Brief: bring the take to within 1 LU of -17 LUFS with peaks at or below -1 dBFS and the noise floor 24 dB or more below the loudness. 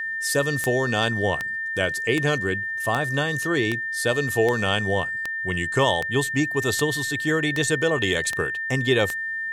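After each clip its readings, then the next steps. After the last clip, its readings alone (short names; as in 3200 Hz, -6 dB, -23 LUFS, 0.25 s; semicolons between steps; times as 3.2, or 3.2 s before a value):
clicks 12; steady tone 1800 Hz; tone level -26 dBFS; loudness -23.0 LUFS; peak -5.0 dBFS; loudness target -17.0 LUFS
-> de-click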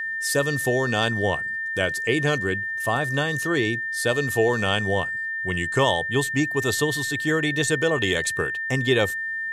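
clicks 0; steady tone 1800 Hz; tone level -26 dBFS
-> notch 1800 Hz, Q 30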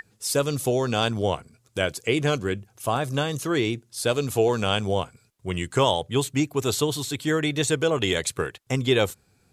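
steady tone none; loudness -25.0 LUFS; peak -6.5 dBFS; loudness target -17.0 LUFS
-> gain +8 dB; limiter -1 dBFS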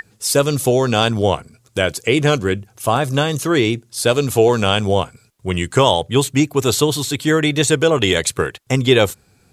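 loudness -17.0 LUFS; peak -1.0 dBFS; noise floor -56 dBFS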